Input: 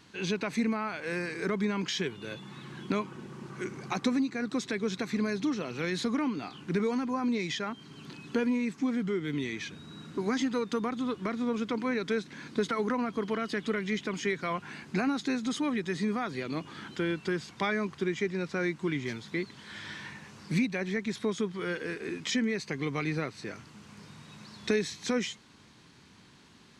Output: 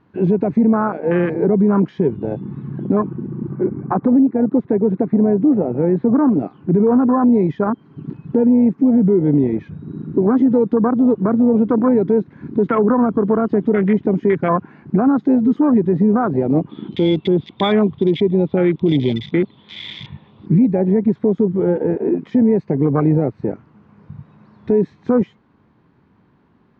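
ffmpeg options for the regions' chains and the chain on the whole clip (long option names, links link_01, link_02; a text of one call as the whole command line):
ffmpeg -i in.wav -filter_complex "[0:a]asettb=1/sr,asplit=3[link_01][link_02][link_03];[link_01]atrim=end=3.554[link_04];[link_02]atrim=start=3.55:end=6.28,asetpts=PTS-STARTPTS,afade=type=in:duration=0.004:curve=qsin,afade=type=out:start_time=2.726:duration=0.004:curve=qsin,lowpass=2000,lowshelf=frequency=170:gain=-4[link_05];[link_03]atrim=start=6.276[link_06];[link_04][link_05]acrossfade=duration=0.004:curve1=hsin:curve2=qsin[link_07];[link_07][link_06]acrossfade=duration=0.004:curve1=qsin:curve2=hsin,asettb=1/sr,asplit=3[link_08][link_09][link_10];[link_08]atrim=end=16.694[link_11];[link_09]atrim=start=16.69:end=20.46,asetpts=PTS-STARTPTS,afade=type=in:duration=0.004:curve=qsin,afade=type=out:start_time=3.766:duration=0.004:curve=qsin,lowpass=frequency=3500:width_type=q:width=15,equalizer=frequency=1600:width=3.1:gain=-10.5[link_12];[link_10]atrim=start=20.456[link_13];[link_11][link_12]acrossfade=duration=0.004:curve1=hsin:curve2=qsin[link_14];[link_14][link_13]acrossfade=duration=0.004:curve1=qsin:curve2=hsin,afwtdn=0.0251,lowpass=1100,alimiter=level_in=25.5dB:limit=-1dB:release=50:level=0:latency=1,volume=-6dB" out.wav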